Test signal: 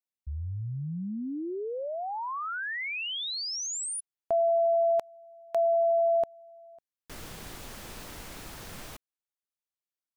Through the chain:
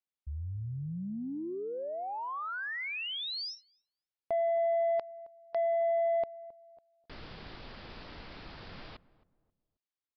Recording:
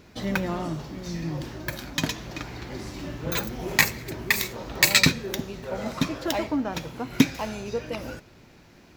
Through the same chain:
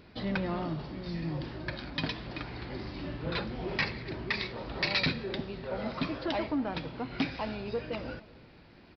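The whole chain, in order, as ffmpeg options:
-filter_complex "[0:a]aresample=11025,asoftclip=type=tanh:threshold=-20.5dB,aresample=44100,asplit=2[a][b];[b]adelay=268,lowpass=f=890:p=1,volume=-18dB,asplit=2[c][d];[d]adelay=268,lowpass=f=890:p=1,volume=0.35,asplit=2[e][f];[f]adelay=268,lowpass=f=890:p=1,volume=0.35[g];[a][c][e][g]amix=inputs=4:normalize=0,volume=-3dB"

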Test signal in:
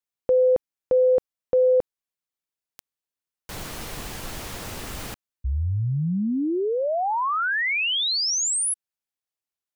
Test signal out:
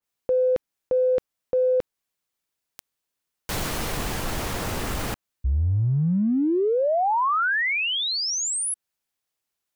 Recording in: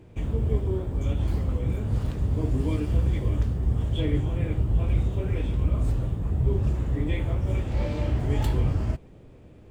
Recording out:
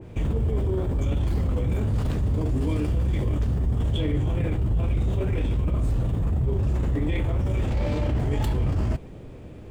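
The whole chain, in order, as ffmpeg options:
-af "areverse,acompressor=threshold=-28dB:ratio=5:attack=0.46:release=36:knee=1:detection=rms,areverse,adynamicequalizer=threshold=0.00501:dfrequency=2100:dqfactor=0.7:tfrequency=2100:tqfactor=0.7:attack=5:release=100:ratio=0.375:range=2.5:mode=cutabove:tftype=highshelf,volume=8dB"

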